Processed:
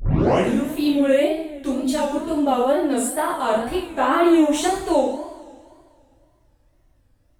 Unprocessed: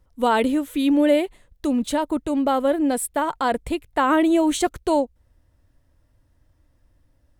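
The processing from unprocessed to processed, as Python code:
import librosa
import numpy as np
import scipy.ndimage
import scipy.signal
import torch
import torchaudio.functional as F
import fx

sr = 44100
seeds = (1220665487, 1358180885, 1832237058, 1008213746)

y = fx.tape_start_head(x, sr, length_s=0.5)
y = fx.rev_double_slope(y, sr, seeds[0], early_s=0.62, late_s=2.3, knee_db=-17, drr_db=-8.5)
y = fx.wow_flutter(y, sr, seeds[1], rate_hz=2.1, depth_cents=140.0)
y = y * 10.0 ** (-7.5 / 20.0)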